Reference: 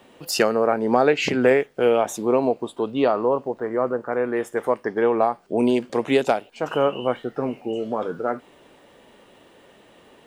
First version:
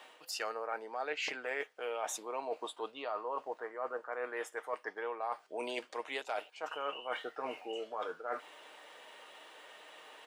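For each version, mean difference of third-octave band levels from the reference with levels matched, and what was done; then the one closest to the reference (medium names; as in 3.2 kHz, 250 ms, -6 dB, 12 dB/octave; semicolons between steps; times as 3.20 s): 9.0 dB: high-pass 830 Hz 12 dB/octave; treble shelf 11 kHz -9 dB; comb 6.5 ms, depth 34%; reverse; compression 6:1, threshold -38 dBFS, peak gain reduction 19.5 dB; reverse; trim +2 dB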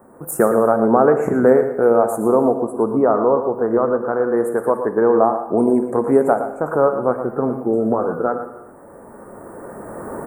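6.5 dB: recorder AGC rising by 10 dB/s; elliptic band-stop 1.4–9 kHz, stop band 70 dB; on a send: delay 116 ms -10.5 dB; on the sum: gated-style reverb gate 400 ms falling, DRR 9 dB; trim +4.5 dB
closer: second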